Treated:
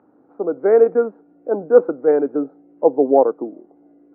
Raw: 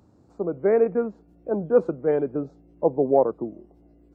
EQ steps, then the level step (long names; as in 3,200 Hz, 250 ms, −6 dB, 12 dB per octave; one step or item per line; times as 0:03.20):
loudspeaker in its box 280–2,100 Hz, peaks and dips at 280 Hz +9 dB, 470 Hz +6 dB, 780 Hz +6 dB, 1,400 Hz +7 dB
+1.5 dB